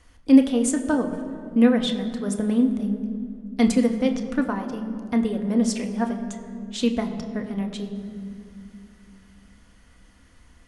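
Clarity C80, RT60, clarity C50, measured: 10.0 dB, 2.5 s, 9.0 dB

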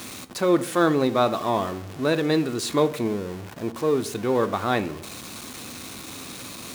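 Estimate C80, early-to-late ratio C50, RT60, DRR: 21.0 dB, 17.0 dB, 0.60 s, 10.0 dB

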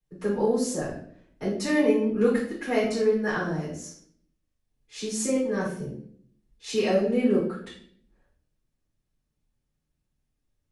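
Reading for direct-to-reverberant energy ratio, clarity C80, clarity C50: -11.5 dB, 8.0 dB, 4.0 dB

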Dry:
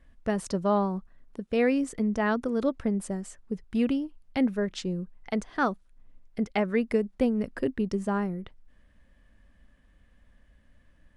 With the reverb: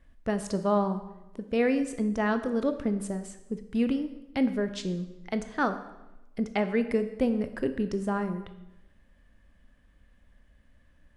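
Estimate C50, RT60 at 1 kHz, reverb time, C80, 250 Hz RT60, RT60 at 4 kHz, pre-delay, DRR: 11.5 dB, 0.95 s, 1.0 s, 13.0 dB, 1.1 s, 0.80 s, 15 ms, 9.0 dB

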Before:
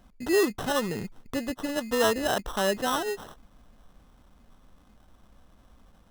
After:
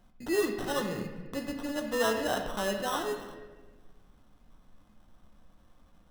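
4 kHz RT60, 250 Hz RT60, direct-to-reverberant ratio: 0.85 s, 1.7 s, 3.0 dB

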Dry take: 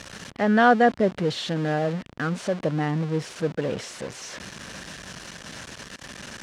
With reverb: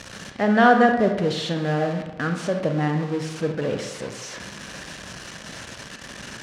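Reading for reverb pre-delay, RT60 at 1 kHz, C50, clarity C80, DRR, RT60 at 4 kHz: 30 ms, 1.1 s, 6.5 dB, 9.0 dB, 5.0 dB, 0.65 s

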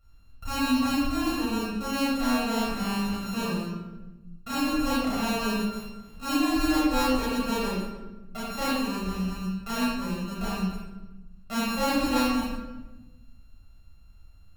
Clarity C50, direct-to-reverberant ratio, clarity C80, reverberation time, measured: -2.0 dB, -8.5 dB, 1.0 dB, 1.1 s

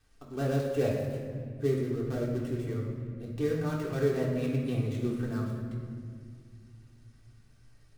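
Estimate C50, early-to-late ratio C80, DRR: 2.0 dB, 4.0 dB, -4.5 dB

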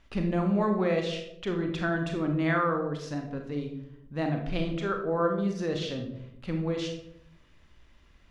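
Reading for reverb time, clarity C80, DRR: 0.75 s, 9.5 dB, 3.0 dB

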